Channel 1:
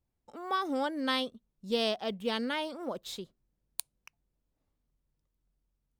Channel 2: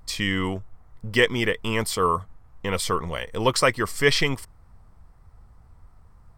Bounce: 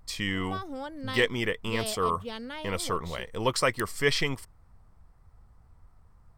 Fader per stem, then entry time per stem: −6.0, −5.5 decibels; 0.00, 0.00 seconds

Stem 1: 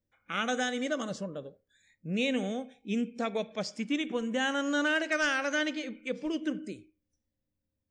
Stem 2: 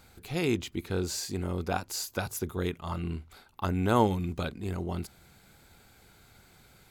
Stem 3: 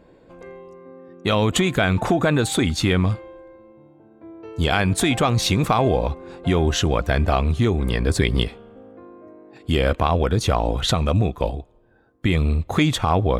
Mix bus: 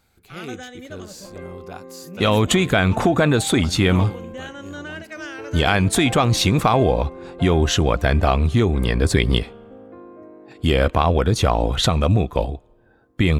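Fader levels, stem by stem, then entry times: −6.5, −6.5, +2.0 decibels; 0.00, 0.00, 0.95 seconds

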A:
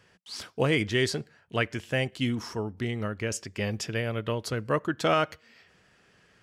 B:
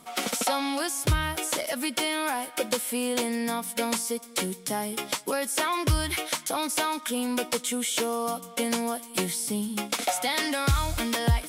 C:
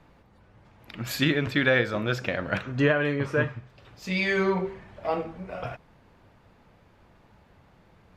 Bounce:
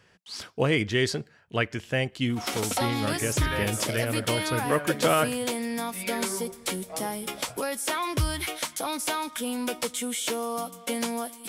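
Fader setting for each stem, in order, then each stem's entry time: +1.0, −2.0, −11.5 decibels; 0.00, 2.30, 1.85 seconds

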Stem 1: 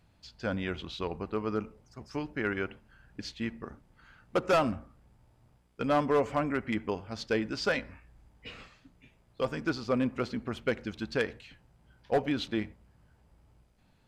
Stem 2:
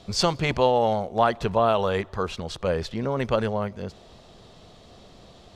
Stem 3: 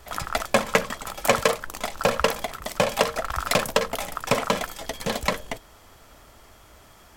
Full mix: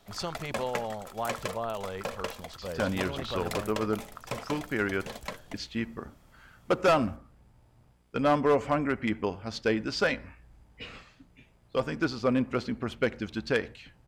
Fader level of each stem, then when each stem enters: +2.5, −13.0, −14.0 decibels; 2.35, 0.00, 0.00 seconds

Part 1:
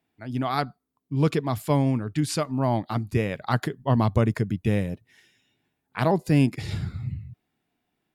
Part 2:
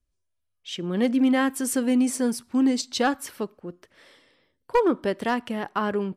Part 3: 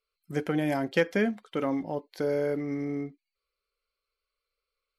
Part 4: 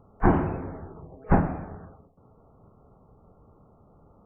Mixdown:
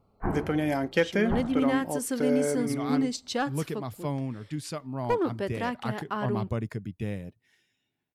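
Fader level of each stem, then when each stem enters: −9.5, −6.0, +0.5, −10.0 decibels; 2.35, 0.35, 0.00, 0.00 seconds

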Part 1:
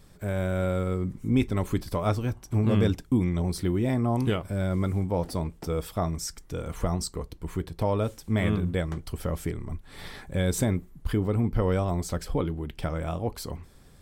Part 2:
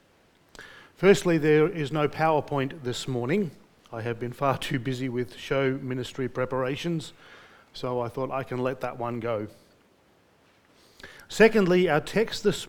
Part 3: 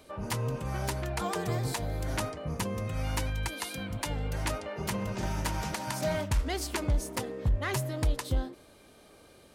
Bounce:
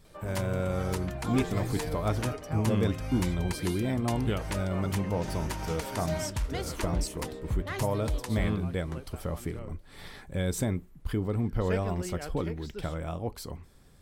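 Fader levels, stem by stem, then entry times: −4.0, −18.0, −3.5 decibels; 0.00, 0.30, 0.05 seconds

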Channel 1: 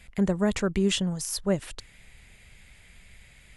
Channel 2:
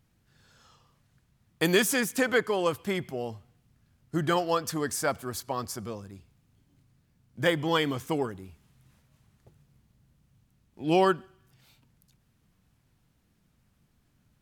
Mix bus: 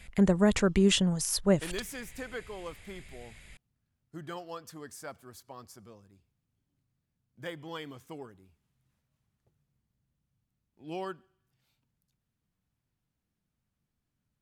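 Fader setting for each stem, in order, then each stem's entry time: +1.0, −15.0 decibels; 0.00, 0.00 seconds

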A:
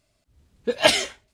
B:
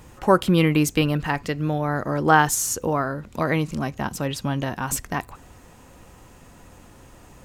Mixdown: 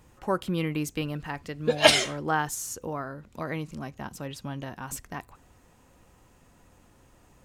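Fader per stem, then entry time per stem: −0.5, −10.5 decibels; 1.00, 0.00 seconds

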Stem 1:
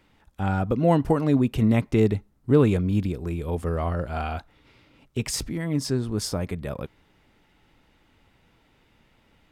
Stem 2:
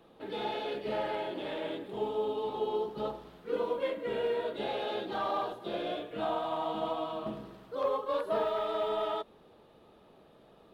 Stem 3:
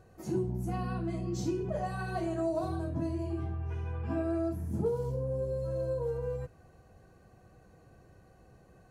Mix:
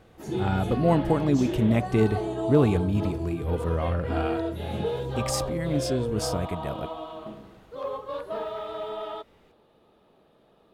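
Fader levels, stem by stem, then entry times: −2.0, −2.0, +1.5 decibels; 0.00, 0.00, 0.00 seconds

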